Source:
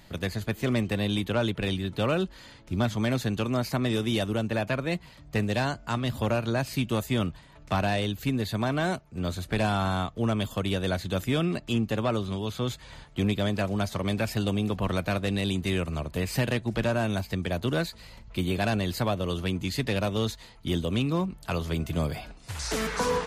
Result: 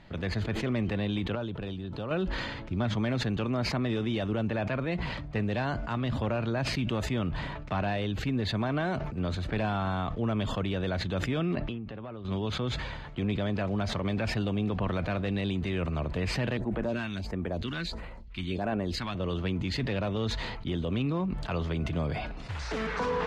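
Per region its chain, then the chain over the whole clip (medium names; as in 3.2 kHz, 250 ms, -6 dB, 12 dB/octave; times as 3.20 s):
1.35–2.11 s: peaking EQ 2.1 kHz -10.5 dB 0.53 oct + compression 4:1, threshold -33 dBFS
11.55–12.25 s: compression 8:1, threshold -37 dBFS + distance through air 170 m
16.57–19.15 s: peaking EQ 120 Hz -11 dB 0.9 oct + phase shifter stages 2, 1.5 Hz, lowest notch 470–5000 Hz
whole clip: peak limiter -22 dBFS; low-pass 3 kHz 12 dB/octave; decay stretcher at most 31 dB/s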